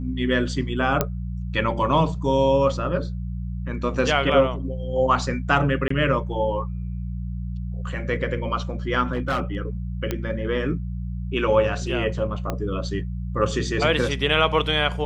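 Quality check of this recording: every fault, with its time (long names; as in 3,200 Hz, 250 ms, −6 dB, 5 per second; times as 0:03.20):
mains hum 60 Hz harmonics 3 −29 dBFS
0:01.01: click −5 dBFS
0:05.88–0:05.90: drop-out 24 ms
0:09.13–0:09.57: clipping −19 dBFS
0:10.11: click −11 dBFS
0:12.50: click −12 dBFS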